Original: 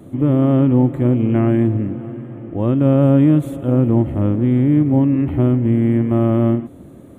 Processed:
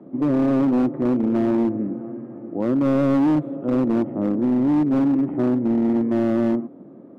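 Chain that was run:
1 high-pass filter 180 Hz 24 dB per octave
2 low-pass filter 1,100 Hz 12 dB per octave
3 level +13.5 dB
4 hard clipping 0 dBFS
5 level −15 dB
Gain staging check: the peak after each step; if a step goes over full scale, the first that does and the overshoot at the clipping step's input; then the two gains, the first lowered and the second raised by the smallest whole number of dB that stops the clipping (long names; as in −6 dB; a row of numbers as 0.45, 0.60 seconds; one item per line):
−5.5, −5.5, +8.0, 0.0, −15.0 dBFS
step 3, 8.0 dB
step 3 +5.5 dB, step 5 −7 dB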